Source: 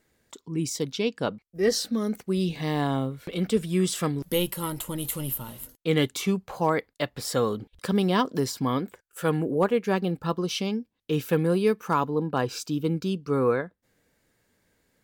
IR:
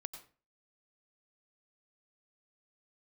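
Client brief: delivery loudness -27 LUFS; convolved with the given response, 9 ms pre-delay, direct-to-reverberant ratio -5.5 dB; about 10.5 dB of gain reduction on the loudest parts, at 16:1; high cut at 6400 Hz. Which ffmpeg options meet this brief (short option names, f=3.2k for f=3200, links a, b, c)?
-filter_complex "[0:a]lowpass=6.4k,acompressor=threshold=-28dB:ratio=16,asplit=2[a][b];[1:a]atrim=start_sample=2205,adelay=9[c];[b][c]afir=irnorm=-1:irlink=0,volume=8.5dB[d];[a][d]amix=inputs=2:normalize=0,volume=1dB"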